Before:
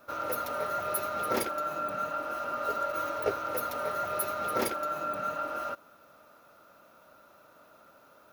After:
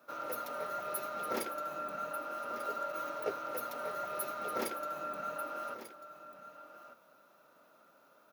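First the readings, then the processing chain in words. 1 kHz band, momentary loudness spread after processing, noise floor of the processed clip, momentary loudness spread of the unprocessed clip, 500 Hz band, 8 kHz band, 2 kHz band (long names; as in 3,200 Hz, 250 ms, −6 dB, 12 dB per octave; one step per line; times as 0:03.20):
−6.5 dB, 15 LU, −65 dBFS, 4 LU, −6.0 dB, −6.5 dB, −6.5 dB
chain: high-pass filter 140 Hz 24 dB per octave
single-tap delay 1,192 ms −12.5 dB
level −6.5 dB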